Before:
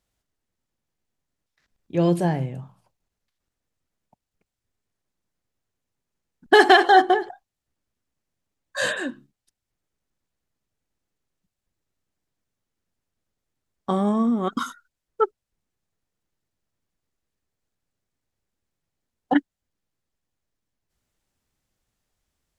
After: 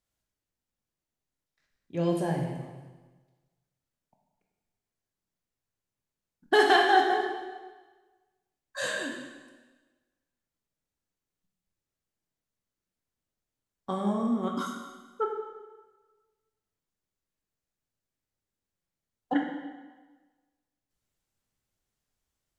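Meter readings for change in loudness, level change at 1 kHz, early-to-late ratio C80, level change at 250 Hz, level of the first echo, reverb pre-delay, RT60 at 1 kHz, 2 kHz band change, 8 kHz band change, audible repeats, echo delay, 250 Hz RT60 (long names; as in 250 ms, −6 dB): −7.0 dB, −6.5 dB, 5.5 dB, −6.5 dB, no echo audible, 7 ms, 1.3 s, −6.5 dB, −4.5 dB, no echo audible, no echo audible, 1.2 s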